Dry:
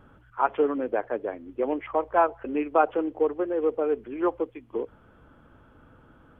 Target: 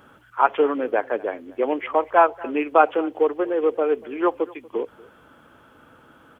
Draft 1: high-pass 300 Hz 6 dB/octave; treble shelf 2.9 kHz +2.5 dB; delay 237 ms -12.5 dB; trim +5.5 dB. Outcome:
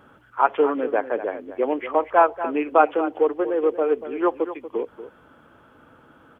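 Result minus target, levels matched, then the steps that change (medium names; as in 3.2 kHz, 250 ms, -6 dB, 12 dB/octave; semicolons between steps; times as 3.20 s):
echo-to-direct +10 dB; 4 kHz band -3.5 dB
change: treble shelf 2.9 kHz +10 dB; change: delay 237 ms -22.5 dB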